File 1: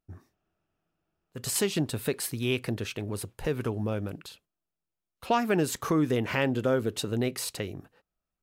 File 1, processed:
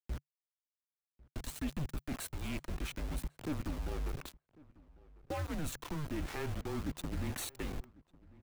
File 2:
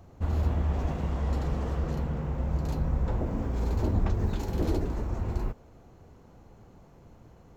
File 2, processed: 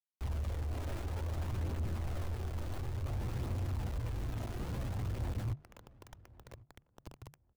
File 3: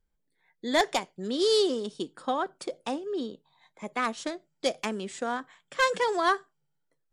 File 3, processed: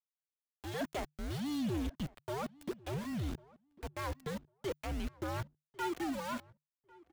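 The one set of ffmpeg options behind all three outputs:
ffmpeg -i in.wav -filter_complex "[0:a]agate=range=-33dB:threshold=-51dB:ratio=3:detection=peak,asuperstop=centerf=5100:order=20:qfactor=6,highshelf=frequency=2500:gain=-9.5,areverse,acompressor=threshold=-39dB:ratio=8,areverse,aeval=exprs='val(0)+0.000501*(sin(2*PI*60*n/s)+sin(2*PI*2*60*n/s)/2+sin(2*PI*3*60*n/s)/3+sin(2*PI*4*60*n/s)/4+sin(2*PI*5*60*n/s)/5)':channel_layout=same,aeval=exprs='val(0)*gte(abs(val(0)),0.00562)':channel_layout=same,afreqshift=-150,asoftclip=type=tanh:threshold=-38dB,aphaser=in_gain=1:out_gain=1:delay=3.3:decay=0.26:speed=0.57:type=triangular,asplit=2[link_01][link_02];[link_02]adelay=1098,lowpass=frequency=1600:poles=1,volume=-22.5dB,asplit=2[link_03][link_04];[link_04]adelay=1098,lowpass=frequency=1600:poles=1,volume=0.18[link_05];[link_01][link_03][link_05]amix=inputs=3:normalize=0,volume=6.5dB" out.wav

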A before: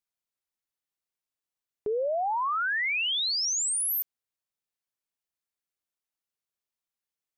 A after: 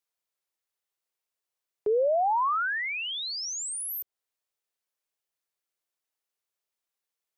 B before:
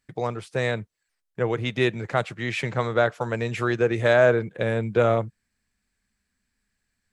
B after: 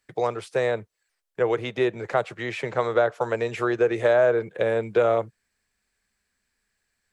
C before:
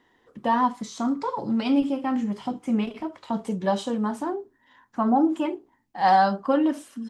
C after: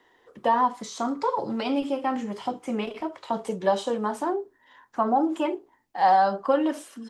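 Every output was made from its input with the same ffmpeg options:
ffmpeg -i in.wav -filter_complex "[0:a]acrossover=split=140|1300[link_01][link_02][link_03];[link_01]acompressor=threshold=-39dB:ratio=4[link_04];[link_02]acompressor=threshold=-20dB:ratio=4[link_05];[link_03]acompressor=threshold=-37dB:ratio=4[link_06];[link_04][link_05][link_06]amix=inputs=3:normalize=0,lowshelf=frequency=320:width_type=q:width=1.5:gain=-6.5,volume=2.5dB" out.wav

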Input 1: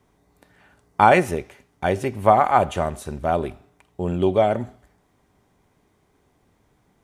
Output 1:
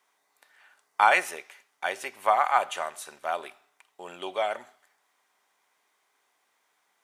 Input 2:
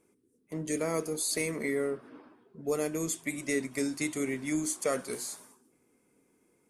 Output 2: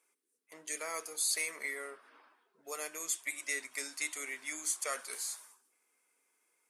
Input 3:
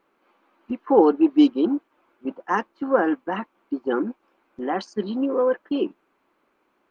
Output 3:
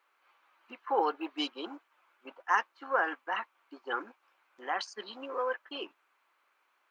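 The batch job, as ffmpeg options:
ffmpeg -i in.wav -af "highpass=1100" out.wav

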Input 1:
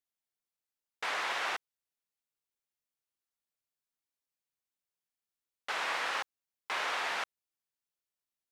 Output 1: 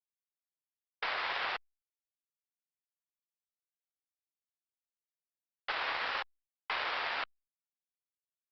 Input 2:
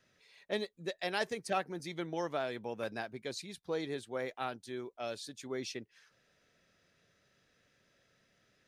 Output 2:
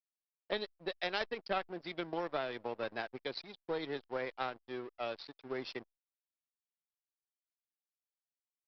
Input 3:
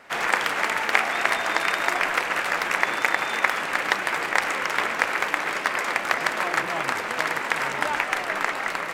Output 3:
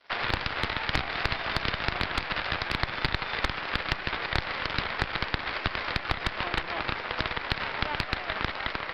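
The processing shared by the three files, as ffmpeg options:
ffmpeg -i in.wav -filter_complex "[0:a]afftdn=noise_reduction=16:noise_floor=-48,aeval=exprs='0.944*(cos(1*acos(clip(val(0)/0.944,-1,1)))-cos(1*PI/2))+0.0237*(cos(5*acos(clip(val(0)/0.944,-1,1)))-cos(5*PI/2))+0.422*(cos(6*acos(clip(val(0)/0.944,-1,1)))-cos(6*PI/2))+0.0106*(cos(7*acos(clip(val(0)/0.944,-1,1)))-cos(7*PI/2))+0.0237*(cos(8*acos(clip(val(0)/0.944,-1,1)))-cos(8*PI/2))':channel_layout=same,acrossover=split=160[link_01][link_02];[link_02]acompressor=threshold=-35dB:ratio=2.5[link_03];[link_01][link_03]amix=inputs=2:normalize=0,aresample=11025,aeval=exprs='sgn(val(0))*max(abs(val(0))-0.00282,0)':channel_layout=same,aresample=44100,crystalizer=i=1:c=0,asoftclip=type=hard:threshold=-12.5dB,bass=frequency=250:gain=-9,treble=frequency=4000:gain=-2,volume=3dB" -ar 48000 -c:a libopus -b:a 64k out.opus

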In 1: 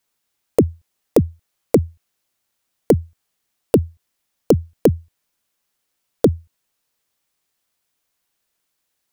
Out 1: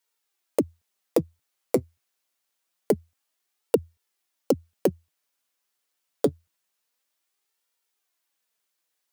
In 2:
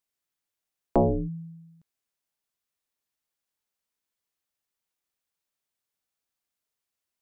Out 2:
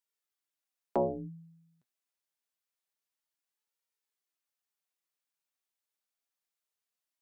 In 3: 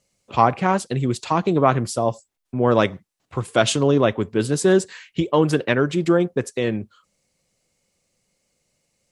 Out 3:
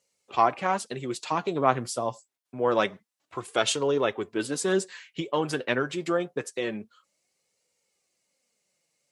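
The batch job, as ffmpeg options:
ffmpeg -i in.wav -af "highpass=frequency=460:poles=1,flanger=delay=2.1:depth=5.9:regen=49:speed=0.26:shape=sinusoidal" out.wav

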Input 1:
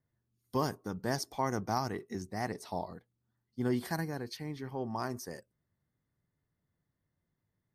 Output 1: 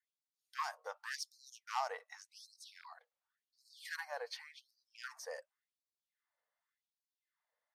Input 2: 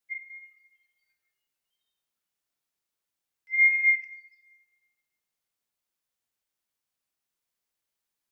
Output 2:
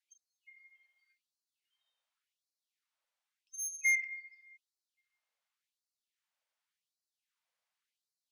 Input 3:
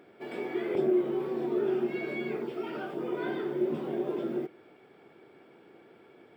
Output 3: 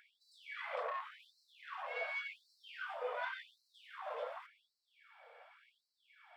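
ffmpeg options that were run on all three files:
ffmpeg -i in.wav -af "aemphasis=mode=reproduction:type=50fm,asoftclip=type=tanh:threshold=-27.5dB,afftfilt=real='re*gte(b*sr/1024,440*pow(4000/440,0.5+0.5*sin(2*PI*0.89*pts/sr)))':imag='im*gte(b*sr/1024,440*pow(4000/440,0.5+0.5*sin(2*PI*0.89*pts/sr)))':win_size=1024:overlap=0.75,volume=2.5dB" out.wav

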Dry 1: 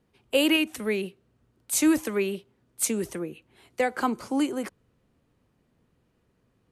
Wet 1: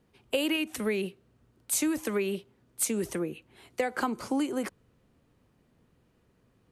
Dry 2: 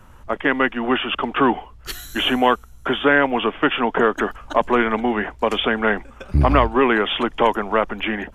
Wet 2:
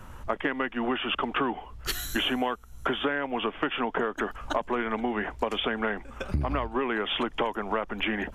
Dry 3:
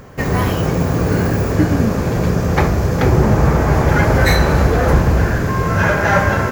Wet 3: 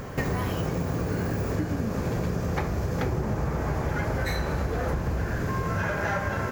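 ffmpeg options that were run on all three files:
ffmpeg -i in.wav -af "acompressor=threshold=-27dB:ratio=8,volume=2dB" out.wav

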